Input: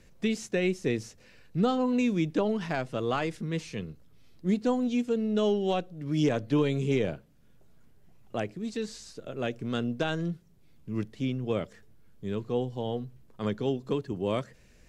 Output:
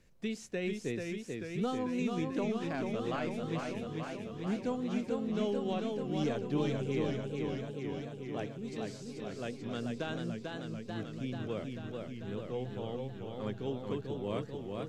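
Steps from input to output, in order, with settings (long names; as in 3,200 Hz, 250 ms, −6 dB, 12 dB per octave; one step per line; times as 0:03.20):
feedback echo with a swinging delay time 440 ms, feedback 74%, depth 106 cents, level −4 dB
level −8.5 dB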